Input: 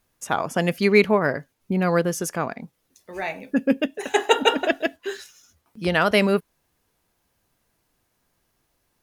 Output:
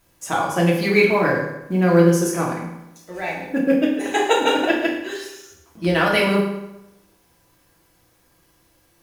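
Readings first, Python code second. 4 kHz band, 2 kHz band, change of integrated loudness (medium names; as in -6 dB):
+1.0 dB, +2.5 dB, +3.0 dB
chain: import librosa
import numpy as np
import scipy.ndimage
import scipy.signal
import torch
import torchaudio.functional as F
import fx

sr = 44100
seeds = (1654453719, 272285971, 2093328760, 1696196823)

y = fx.law_mismatch(x, sr, coded='mu')
y = fx.rev_fdn(y, sr, rt60_s=0.92, lf_ratio=1.0, hf_ratio=0.8, size_ms=18.0, drr_db=-3.5)
y = y * 10.0 ** (-3.0 / 20.0)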